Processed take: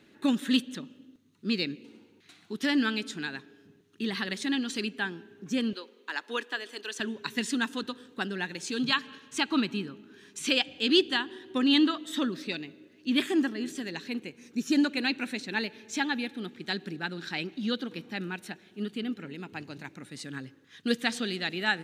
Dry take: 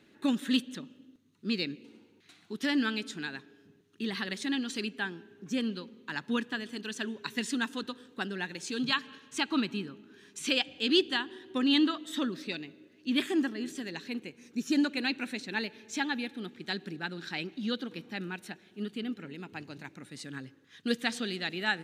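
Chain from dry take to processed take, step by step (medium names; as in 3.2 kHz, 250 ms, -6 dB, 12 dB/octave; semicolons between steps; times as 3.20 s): 5.73–7.00 s: high-pass 370 Hz 24 dB/octave; trim +2.5 dB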